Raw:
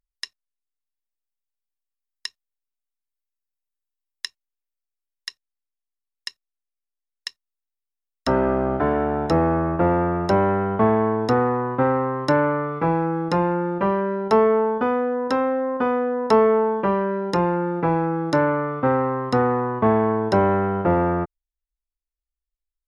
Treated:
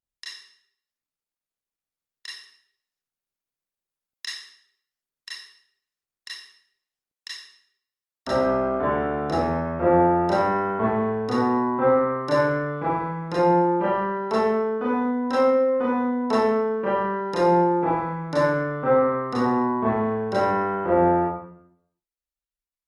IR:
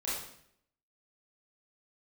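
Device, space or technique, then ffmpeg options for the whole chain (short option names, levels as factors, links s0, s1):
far-field microphone of a smart speaker: -filter_complex "[1:a]atrim=start_sample=2205[s0];[0:a][s0]afir=irnorm=-1:irlink=0,highpass=f=99:p=1,dynaudnorm=f=720:g=9:m=1.5,volume=0.531" -ar 48000 -c:a libopus -b:a 48k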